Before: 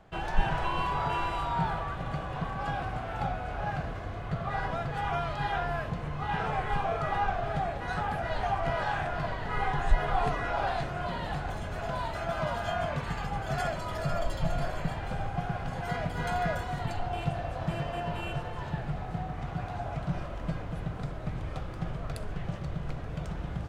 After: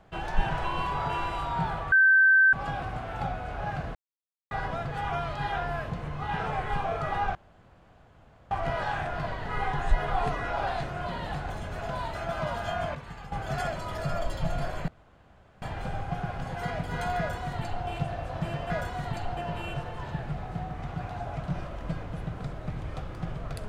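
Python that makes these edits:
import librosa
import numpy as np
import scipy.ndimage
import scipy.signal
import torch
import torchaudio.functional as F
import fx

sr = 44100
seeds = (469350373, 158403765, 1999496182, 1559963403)

y = fx.edit(x, sr, fx.bleep(start_s=1.92, length_s=0.61, hz=1550.0, db=-15.5),
    fx.silence(start_s=3.95, length_s=0.56),
    fx.room_tone_fill(start_s=7.35, length_s=1.16),
    fx.clip_gain(start_s=12.95, length_s=0.37, db=-8.5),
    fx.insert_room_tone(at_s=14.88, length_s=0.74),
    fx.duplicate(start_s=16.44, length_s=0.67, to_s=17.96), tone=tone)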